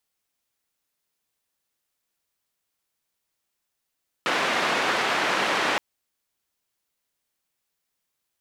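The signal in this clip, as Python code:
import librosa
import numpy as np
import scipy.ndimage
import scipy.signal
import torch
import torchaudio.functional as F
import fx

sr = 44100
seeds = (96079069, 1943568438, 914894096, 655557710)

y = fx.band_noise(sr, seeds[0], length_s=1.52, low_hz=290.0, high_hz=2100.0, level_db=-24.0)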